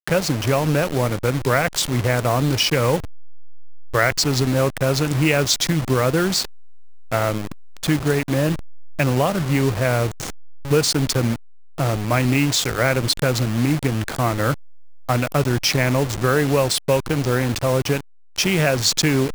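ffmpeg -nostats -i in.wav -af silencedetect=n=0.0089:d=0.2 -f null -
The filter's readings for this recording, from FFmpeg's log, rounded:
silence_start: 18.01
silence_end: 18.36 | silence_duration: 0.36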